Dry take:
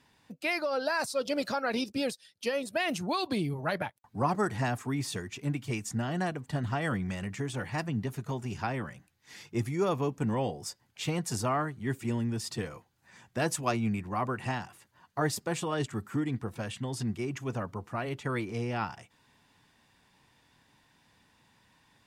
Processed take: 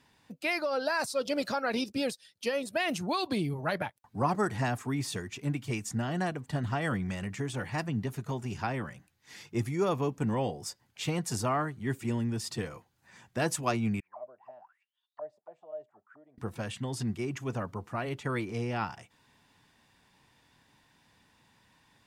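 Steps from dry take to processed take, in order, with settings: 14–16.38 auto-wah 610–4100 Hz, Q 20, down, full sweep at -29 dBFS

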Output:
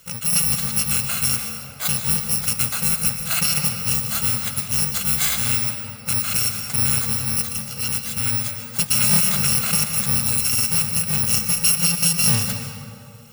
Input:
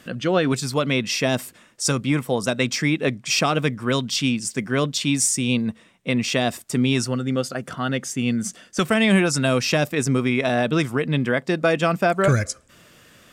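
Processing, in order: FFT order left unsorted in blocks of 128 samples; 11.15–11.72 doubler 32 ms -5 dB; on a send at -5 dB: reverb RT60 2.0 s, pre-delay 0.112 s; on the sum: dynamic EQ 490 Hz, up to -7 dB, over -43 dBFS, Q 0.91

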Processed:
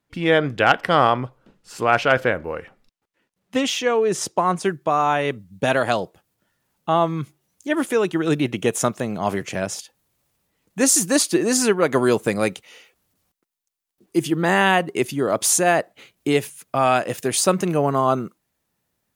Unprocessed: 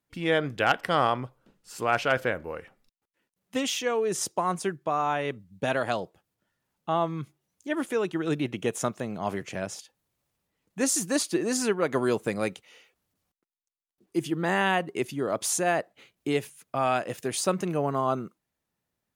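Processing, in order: high shelf 7300 Hz -9 dB, from 4.65 s +4 dB; gain +7.5 dB

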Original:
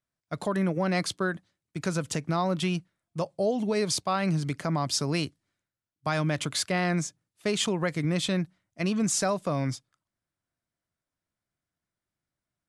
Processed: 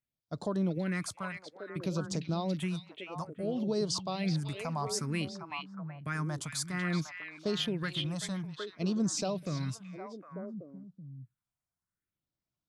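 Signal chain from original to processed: phaser stages 4, 0.58 Hz, lowest notch 370–2300 Hz; delay with a stepping band-pass 0.379 s, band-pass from 2900 Hz, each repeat -1.4 oct, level -1 dB; gain -4.5 dB

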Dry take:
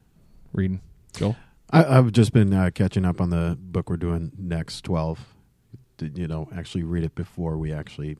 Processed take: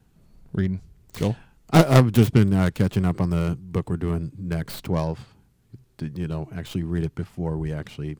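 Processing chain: tracing distortion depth 0.38 ms

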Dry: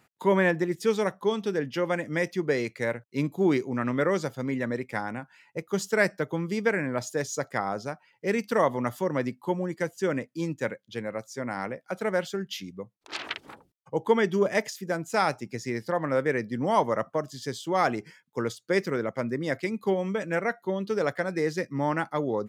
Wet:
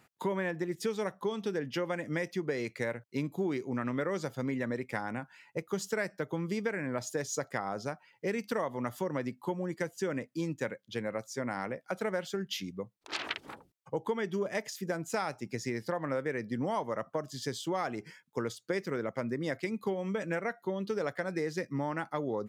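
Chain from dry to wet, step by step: compressor 5:1, threshold -30 dBFS, peak gain reduction 13 dB

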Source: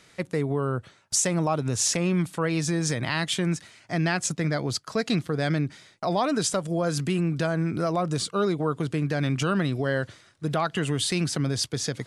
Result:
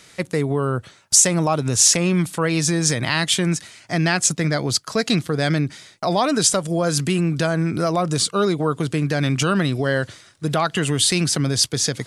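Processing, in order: high shelf 3700 Hz +7 dB; gain +5 dB

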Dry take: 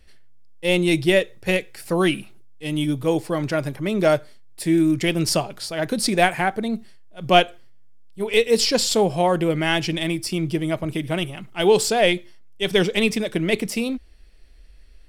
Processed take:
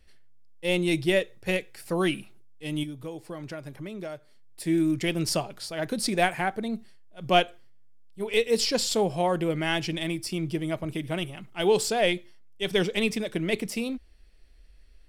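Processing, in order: 2.83–4.67 compressor 6:1, threshold -29 dBFS, peak gain reduction 15 dB; gain -6 dB

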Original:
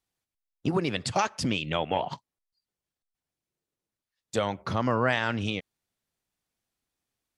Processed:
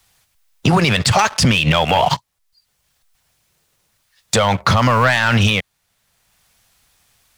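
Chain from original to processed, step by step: bell 310 Hz -13.5 dB 1.4 oct; sample leveller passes 2; maximiser +24 dB; three-band squash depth 40%; gain -5 dB

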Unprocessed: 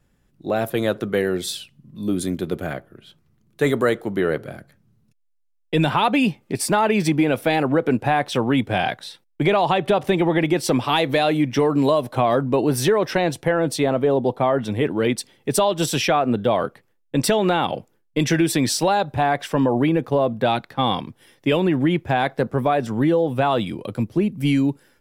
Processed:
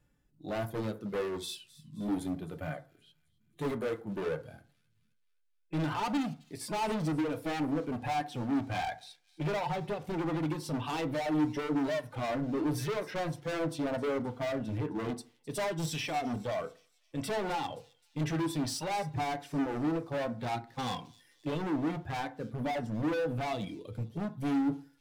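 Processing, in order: reverb removal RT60 0.92 s; harmonic-percussive split percussive -16 dB; overloaded stage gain 28 dB; thin delay 0.262 s, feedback 51%, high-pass 4300 Hz, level -16 dB; FDN reverb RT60 0.38 s, low-frequency decay 1×, high-frequency decay 0.45×, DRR 7.5 dB; gain -3.5 dB

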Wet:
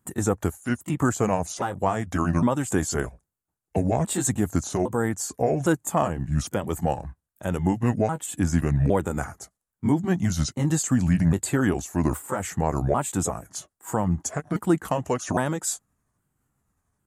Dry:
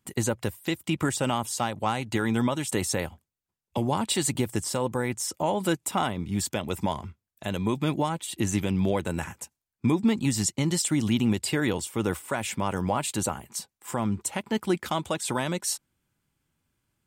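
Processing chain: repeated pitch sweeps -6 st, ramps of 0.809 s; band shelf 3500 Hz -11 dB; gain +4.5 dB

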